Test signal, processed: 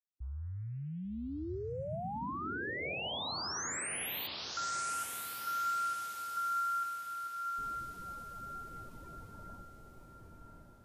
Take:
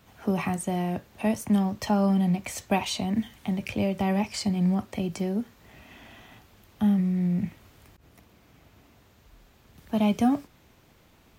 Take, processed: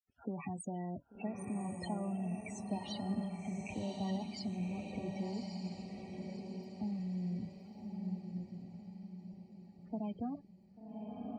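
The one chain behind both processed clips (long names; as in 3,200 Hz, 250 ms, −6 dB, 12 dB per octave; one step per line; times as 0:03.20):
downward compressor 6 to 1, threshold −28 dBFS
centre clipping without the shift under −47 dBFS
spectral peaks only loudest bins 16
on a send: feedback delay with all-pass diffusion 1,138 ms, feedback 42%, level −3 dB
on the sum: level −8.5 dB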